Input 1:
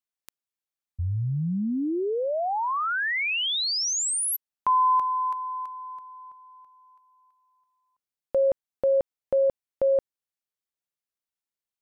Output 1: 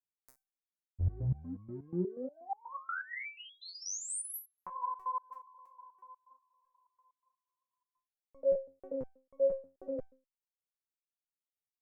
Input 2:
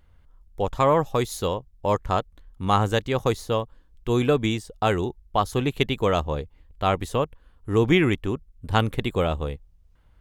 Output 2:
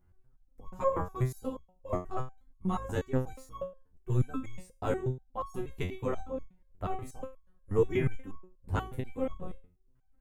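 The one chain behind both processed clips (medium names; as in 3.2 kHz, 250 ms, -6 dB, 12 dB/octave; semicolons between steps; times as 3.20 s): octave divider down 1 oct, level +1 dB; peaking EQ 3.5 kHz -12.5 dB 1.1 oct; LFO notch sine 8.4 Hz 520–4700 Hz; resonator arpeggio 8.3 Hz 90–1100 Hz; trim +1.5 dB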